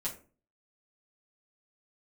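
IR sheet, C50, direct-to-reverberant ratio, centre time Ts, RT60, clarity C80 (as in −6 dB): 10.5 dB, −7.0 dB, 17 ms, 0.40 s, 16.0 dB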